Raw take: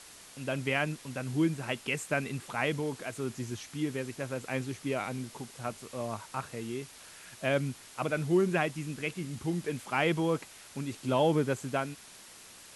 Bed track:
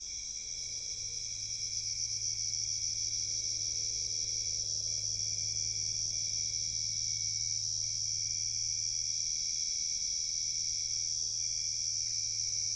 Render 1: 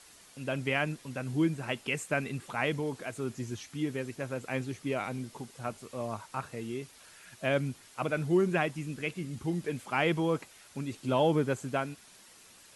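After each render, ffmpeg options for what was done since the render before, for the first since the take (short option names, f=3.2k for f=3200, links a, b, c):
-af "afftdn=nr=6:nf=-52"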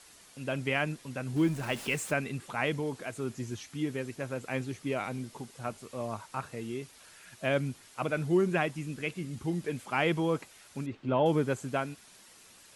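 -filter_complex "[0:a]asettb=1/sr,asplit=3[a][b][c];[a]atrim=end=1.364[d];[b]atrim=start=1.36:end=2.13,asetpts=PTS-STARTPTS,afade=t=in:d=0.004:c=qsin,afade=t=out:st=0.766:d=0.004:c=qsin,aeval=exprs='val(0)+0.5*0.0106*sgn(val(0))':c=same[e];[c]atrim=start=2.126[f];[d][e]acrossfade=d=0.004:c1=hsin:c2=qsin[g];[g][f]acrossfade=d=0.004:c1=qsin:c2=hsin,asettb=1/sr,asplit=3[h][i][j];[h]atrim=end=10.864[k];[i]atrim=start=10.86:end=11.26,asetpts=PTS-STARTPTS,afade=t=in:d=0.004:c=qsin,afade=t=out:st=0.396:d=0.004:c=qsin,lowpass=2.3k[l];[j]atrim=start=11.256[m];[k][l]acrossfade=d=0.004:c1=hsin:c2=qsin[n];[n][m]acrossfade=d=0.004:c1=qsin:c2=hsin"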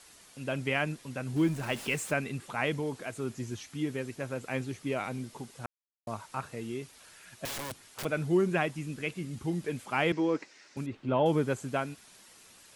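-filter_complex "[0:a]asettb=1/sr,asplit=3[a][b][c];[a]atrim=end=7.454[d];[b]atrim=start=7.45:end=8.05,asetpts=PTS-STARTPTS,afade=t=in:d=0.004:c=qsin,afade=t=out:st=0.596:d=0.004:c=qsin,aeval=exprs='(mod(42.2*val(0)+1,2)-1)/42.2':c=same[e];[c]atrim=start=8.046[f];[d][e]acrossfade=d=0.004:c1=hsin:c2=qsin[g];[g][f]acrossfade=d=0.004:c1=qsin:c2=hsin,asettb=1/sr,asplit=3[h][i][j];[h]atrim=end=10.124[k];[i]atrim=start=10.12:end=10.77,asetpts=PTS-STARTPTS,afade=t=in:d=0.004:c=qsin,afade=t=out:st=0.646:d=0.004:c=qsin,highpass=250,equalizer=f=300:t=q:w=4:g=7,equalizer=f=720:t=q:w=4:g=-5,equalizer=f=1.2k:t=q:w=4:g=-4,equalizer=f=1.9k:t=q:w=4:g=5,equalizer=f=3.3k:t=q:w=4:g=-6,equalizer=f=5.3k:t=q:w=4:g=4,lowpass=f=6.4k:w=0.5412,lowpass=f=6.4k:w=1.3066[l];[j]atrim=start=10.766[m];[k][l]acrossfade=d=0.004:c1=hsin:c2=qsin[n];[n][m]acrossfade=d=0.004:c1=qsin:c2=hsin,asplit=3[o][p][q];[o]atrim=end=5.66,asetpts=PTS-STARTPTS,afade=t=out:st=5.656:d=0.004:c=hsin[r];[p]atrim=start=5.66:end=6.07,asetpts=PTS-STARTPTS,volume=0[s];[q]atrim=start=6.07,asetpts=PTS-STARTPTS,afade=t=in:d=0.004:c=hsin[t];[r][s][t]concat=n=3:v=0:a=1"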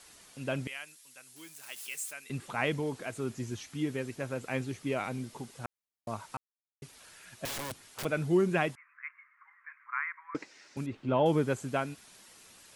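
-filter_complex "[0:a]asettb=1/sr,asplit=3[a][b][c];[a]atrim=end=0.674[d];[b]atrim=start=0.67:end=2.3,asetpts=PTS-STARTPTS,afade=t=in:d=0.004:c=qsin,afade=t=out:st=1.626:d=0.004:c=qsin,aderivative[e];[c]atrim=start=2.296[f];[d][e]acrossfade=d=0.004:c1=hsin:c2=qsin[g];[g][f]acrossfade=d=0.004:c1=qsin:c2=hsin,asettb=1/sr,asplit=3[h][i][j];[h]atrim=end=8.754[k];[i]atrim=start=8.75:end=10.35,asetpts=PTS-STARTPTS,afade=t=in:d=0.004:c=qsin,afade=t=out:st=1.596:d=0.004:c=qsin,asuperpass=centerf=1500:order=12:qfactor=1.3[l];[j]atrim=start=10.346[m];[k][l]acrossfade=d=0.004:c1=hsin:c2=qsin[n];[n][m]acrossfade=d=0.004:c1=qsin:c2=hsin,asplit=3[o][p][q];[o]atrim=end=6.37,asetpts=PTS-STARTPTS,afade=t=out:st=6.366:d=0.004:c=hsin[r];[p]atrim=start=6.37:end=6.82,asetpts=PTS-STARTPTS,volume=0[s];[q]atrim=start=6.82,asetpts=PTS-STARTPTS,afade=t=in:d=0.004:c=hsin[t];[r][s][t]concat=n=3:v=0:a=1"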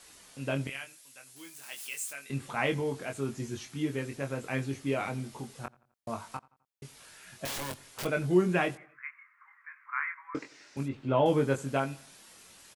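-filter_complex "[0:a]asplit=2[a][b];[b]adelay=22,volume=-5dB[c];[a][c]amix=inputs=2:normalize=0,asplit=2[d][e];[e]adelay=86,lowpass=f=2.9k:p=1,volume=-22.5dB,asplit=2[f][g];[g]adelay=86,lowpass=f=2.9k:p=1,volume=0.48,asplit=2[h][i];[i]adelay=86,lowpass=f=2.9k:p=1,volume=0.48[j];[d][f][h][j]amix=inputs=4:normalize=0"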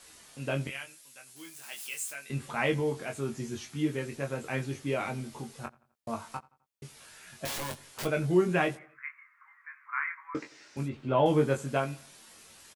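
-filter_complex "[0:a]asplit=2[a][b];[b]adelay=13,volume=-8dB[c];[a][c]amix=inputs=2:normalize=0"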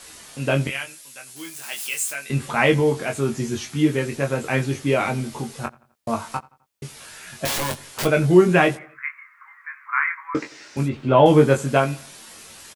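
-af "volume=11dB,alimiter=limit=-2dB:level=0:latency=1"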